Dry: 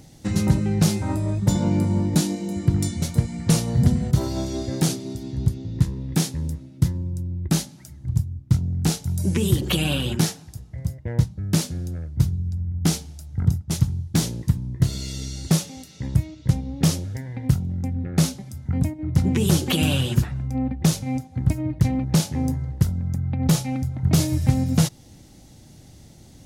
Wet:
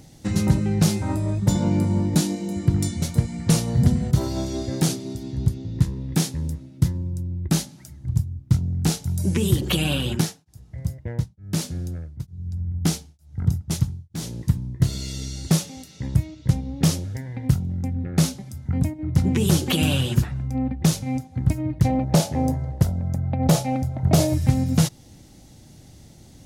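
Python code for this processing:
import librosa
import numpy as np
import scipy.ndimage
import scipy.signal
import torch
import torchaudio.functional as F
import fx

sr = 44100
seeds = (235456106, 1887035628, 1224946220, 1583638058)

y = fx.tremolo_abs(x, sr, hz=1.1, at=(10.2, 14.79), fade=0.02)
y = fx.peak_eq(y, sr, hz=640.0, db=12.5, octaves=0.86, at=(21.85, 24.34))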